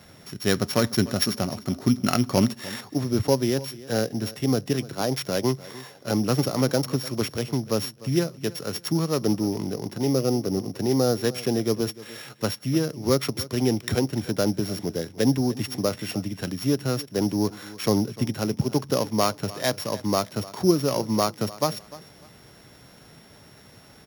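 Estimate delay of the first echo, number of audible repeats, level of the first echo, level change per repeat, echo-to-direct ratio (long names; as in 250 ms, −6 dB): 299 ms, 2, −18.5 dB, −12.0 dB, −18.0 dB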